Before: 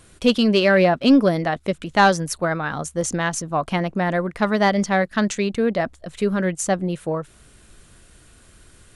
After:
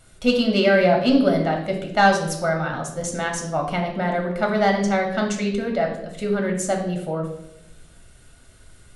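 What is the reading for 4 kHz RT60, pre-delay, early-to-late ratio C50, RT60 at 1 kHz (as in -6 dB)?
0.70 s, 3 ms, 6.5 dB, 0.70 s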